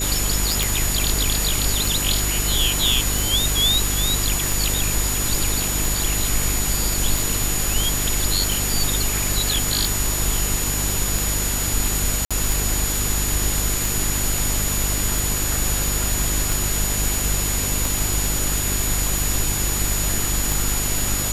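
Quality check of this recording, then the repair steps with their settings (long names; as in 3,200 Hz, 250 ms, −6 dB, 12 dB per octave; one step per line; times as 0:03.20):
mains buzz 50 Hz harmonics 9 −26 dBFS
scratch tick 45 rpm
whistle 6,900 Hz −26 dBFS
0:00.63: click
0:12.25–0:12.31: drop-out 56 ms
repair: click removal
hum removal 50 Hz, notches 9
notch filter 6,900 Hz, Q 30
repair the gap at 0:12.25, 56 ms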